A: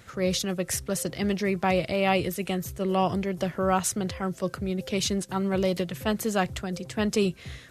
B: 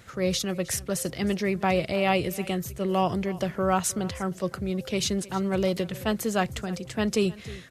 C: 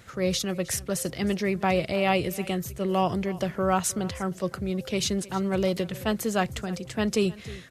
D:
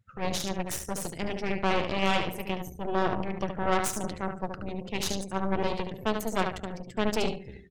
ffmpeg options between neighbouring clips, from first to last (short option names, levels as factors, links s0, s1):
-af "aecho=1:1:312:0.106"
-af anull
-af "aecho=1:1:72|144|216|288|360:0.562|0.214|0.0812|0.0309|0.0117,afftdn=nr=26:nf=-39,aeval=exprs='0.335*(cos(1*acos(clip(val(0)/0.335,-1,1)))-cos(1*PI/2))+0.0335*(cos(3*acos(clip(val(0)/0.335,-1,1)))-cos(3*PI/2))+0.0841*(cos(4*acos(clip(val(0)/0.335,-1,1)))-cos(4*PI/2))+0.0188*(cos(8*acos(clip(val(0)/0.335,-1,1)))-cos(8*PI/2))':c=same,volume=0.631"